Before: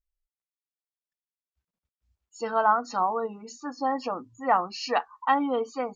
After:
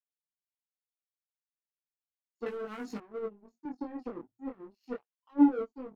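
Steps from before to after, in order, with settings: 4.96–5.59 formant sharpening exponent 2; limiter -19 dBFS, peak gain reduction 10 dB; resonant low shelf 530 Hz +12.5 dB, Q 3; 2.46–2.98 sample leveller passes 3; rotary speaker horn 5 Hz, later 0.8 Hz, at 2.02; power-law curve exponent 2; chorus 0.34 Hz, delay 19 ms, depth 7.1 ms; 3.65–4.32 three-band squash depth 70%; gain -4.5 dB

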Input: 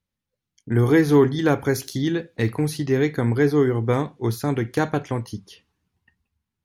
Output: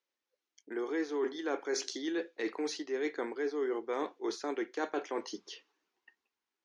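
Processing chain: elliptic band-pass 340–6400 Hz, stop band 40 dB; reverse; compressor 6:1, threshold -32 dBFS, peak gain reduction 17.5 dB; reverse

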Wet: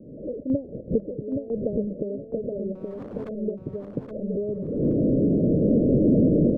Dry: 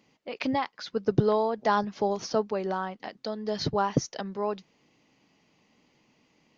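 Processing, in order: delta modulation 64 kbps, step -31 dBFS; recorder AGC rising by 48 dB/s; steep low-pass 600 Hz 96 dB/oct; 2.75–3.29 hard clip -31 dBFS, distortion -22 dB; random-step tremolo 2 Hz, depth 80%; feedback echo 0.822 s, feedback 27%, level -4.5 dB; gain +1.5 dB

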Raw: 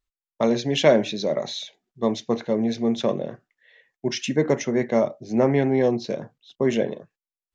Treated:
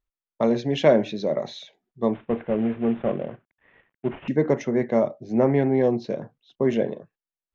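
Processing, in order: 2.13–4.28 CVSD 16 kbps; LPF 1700 Hz 6 dB/oct

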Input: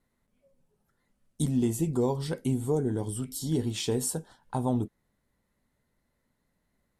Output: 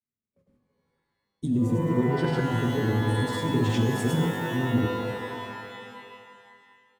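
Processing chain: gate with hold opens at -58 dBFS; band shelf 700 Hz -10.5 dB 1.2 oct; AGC gain up to 12 dB; low shelf 470 Hz +5 dB; reverse; compressor 6:1, threshold -21 dBFS, peak gain reduction 13.5 dB; reverse; HPF 83 Hz 12 dB/oct; notches 50/100/150/200/250/300/350/400/450 Hz; on a send: feedback echo 0.271 s, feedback 49%, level -17.5 dB; on the sum: grains, pitch spread up and down by 0 st; LPF 1800 Hz 6 dB/oct; shimmer reverb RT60 2.1 s, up +12 st, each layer -2 dB, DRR 5.5 dB

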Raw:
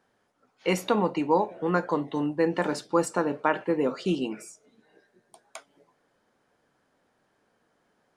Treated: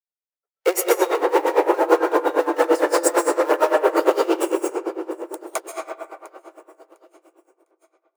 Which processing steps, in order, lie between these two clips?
expander -54 dBFS; sample leveller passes 5; bell 3500 Hz -9 dB 1.7 oct; on a send: feedback echo 0.703 s, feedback 56%, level -23.5 dB; on the sum: digital reverb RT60 2.8 s, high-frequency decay 0.35×, pre-delay 0.115 s, DRR -5 dB; in parallel at +1 dB: compressor, threshold -15 dBFS, peak gain reduction 12 dB; on the sum: steep high-pass 340 Hz 72 dB/oct; high shelf 10000 Hz +6.5 dB; dB-linear tremolo 8.8 Hz, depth 19 dB; gain -5 dB

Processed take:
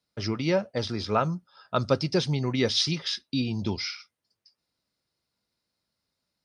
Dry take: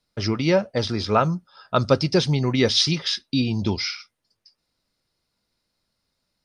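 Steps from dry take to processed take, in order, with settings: HPF 62 Hz; gain -5.5 dB

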